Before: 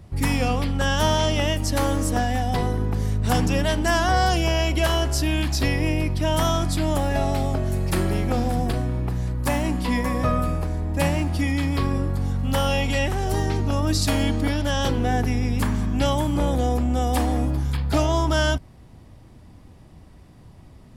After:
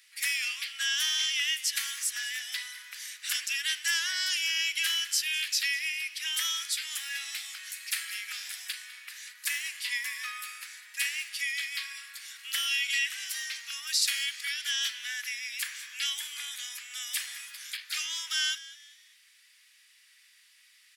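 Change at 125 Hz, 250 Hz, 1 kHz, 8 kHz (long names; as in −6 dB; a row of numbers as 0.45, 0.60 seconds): below −40 dB, below −40 dB, −24.5 dB, +1.5 dB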